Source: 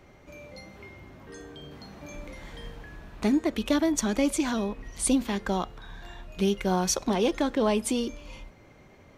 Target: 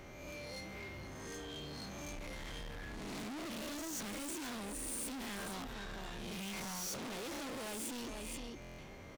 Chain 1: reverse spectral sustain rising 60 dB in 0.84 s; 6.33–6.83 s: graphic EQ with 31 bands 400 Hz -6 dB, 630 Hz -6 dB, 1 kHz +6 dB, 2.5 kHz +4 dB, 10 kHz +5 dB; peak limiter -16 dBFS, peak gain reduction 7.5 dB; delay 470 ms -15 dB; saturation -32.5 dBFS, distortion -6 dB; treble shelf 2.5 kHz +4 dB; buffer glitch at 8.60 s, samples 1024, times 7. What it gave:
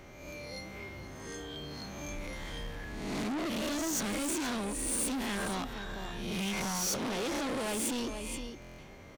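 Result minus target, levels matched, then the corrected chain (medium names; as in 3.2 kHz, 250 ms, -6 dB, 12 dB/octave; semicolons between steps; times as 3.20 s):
saturation: distortion -4 dB
reverse spectral sustain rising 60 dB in 0.84 s; 6.33–6.83 s: graphic EQ with 31 bands 400 Hz -6 dB, 630 Hz -6 dB, 1 kHz +6 dB, 2.5 kHz +4 dB, 10 kHz +5 dB; peak limiter -16 dBFS, peak gain reduction 7.5 dB; delay 470 ms -15 dB; saturation -43 dBFS, distortion -1 dB; treble shelf 2.5 kHz +4 dB; buffer glitch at 8.60 s, samples 1024, times 7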